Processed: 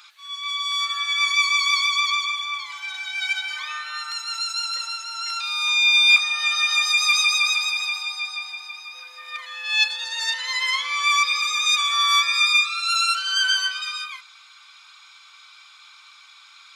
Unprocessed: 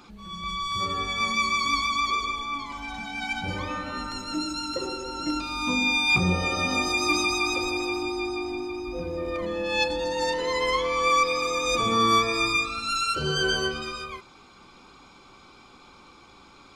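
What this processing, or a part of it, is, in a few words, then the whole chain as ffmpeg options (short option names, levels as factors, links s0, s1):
headphones lying on a table: -af "highpass=f=1400:w=0.5412,highpass=f=1400:w=1.3066,equalizer=f=3700:t=o:w=0.2:g=5.5,volume=2.11"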